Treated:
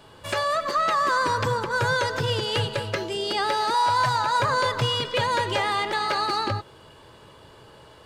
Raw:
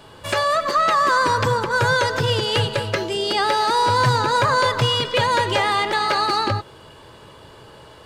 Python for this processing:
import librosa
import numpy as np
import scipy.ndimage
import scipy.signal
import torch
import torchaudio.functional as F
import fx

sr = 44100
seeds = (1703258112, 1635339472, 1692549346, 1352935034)

y = fx.low_shelf_res(x, sr, hz=540.0, db=-6.5, q=3.0, at=(3.74, 4.4))
y = F.gain(torch.from_numpy(y), -5.0).numpy()